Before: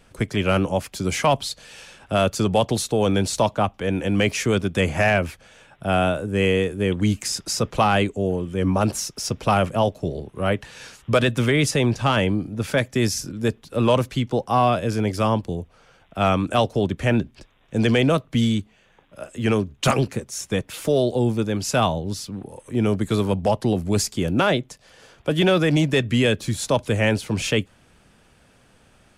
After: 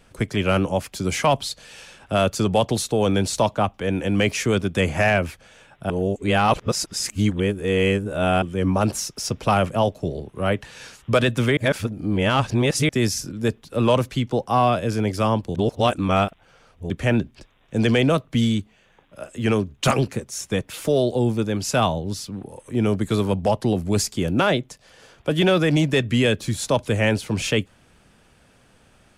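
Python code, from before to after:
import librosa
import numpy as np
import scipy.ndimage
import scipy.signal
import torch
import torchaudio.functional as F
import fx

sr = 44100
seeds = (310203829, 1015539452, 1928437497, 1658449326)

y = fx.edit(x, sr, fx.reverse_span(start_s=5.9, length_s=2.52),
    fx.reverse_span(start_s=11.57, length_s=1.32),
    fx.reverse_span(start_s=15.55, length_s=1.35), tone=tone)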